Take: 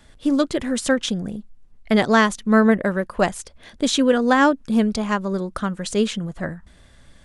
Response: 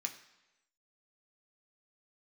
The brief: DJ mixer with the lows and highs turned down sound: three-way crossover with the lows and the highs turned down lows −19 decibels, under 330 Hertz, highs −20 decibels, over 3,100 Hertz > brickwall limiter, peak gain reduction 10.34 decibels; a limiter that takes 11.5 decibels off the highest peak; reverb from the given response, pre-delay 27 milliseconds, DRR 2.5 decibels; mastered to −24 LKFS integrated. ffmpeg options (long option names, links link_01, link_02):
-filter_complex "[0:a]alimiter=limit=-15dB:level=0:latency=1,asplit=2[link_01][link_02];[1:a]atrim=start_sample=2205,adelay=27[link_03];[link_02][link_03]afir=irnorm=-1:irlink=0,volume=-2dB[link_04];[link_01][link_04]amix=inputs=2:normalize=0,acrossover=split=330 3100:gain=0.112 1 0.1[link_05][link_06][link_07];[link_05][link_06][link_07]amix=inputs=3:normalize=0,volume=8dB,alimiter=limit=-13dB:level=0:latency=1"